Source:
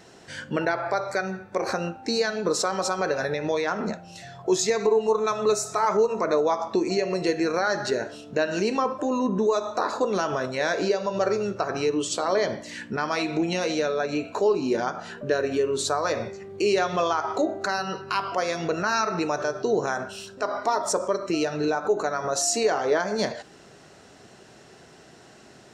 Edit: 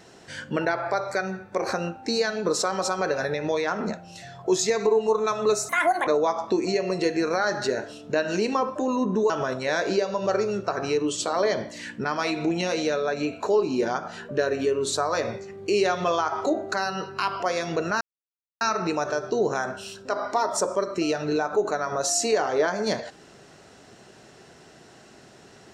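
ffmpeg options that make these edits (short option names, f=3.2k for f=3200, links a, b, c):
-filter_complex "[0:a]asplit=5[a][b][c][d][e];[a]atrim=end=5.694[f];[b]atrim=start=5.69:end=6.3,asetpts=PTS-STARTPTS,asetrate=71001,aresample=44100[g];[c]atrim=start=6.296:end=9.532[h];[d]atrim=start=10.218:end=18.93,asetpts=PTS-STARTPTS,afade=t=out:st=8.708:d=0.004:c=hsin,apad=pad_dur=0.6[i];[e]atrim=start=18.93,asetpts=PTS-STARTPTS,afade=t=in:d=0.004:c=hsin[j];[f][g]acrossfade=d=0.004:c1=hsin:c2=hsin[k];[k][h]acrossfade=d=0.004:c1=hsin:c2=hsin[l];[i][j]concat=n=2:v=0:a=1[m];[l][m]acrossfade=d=0.004:c1=hsin:c2=hsin"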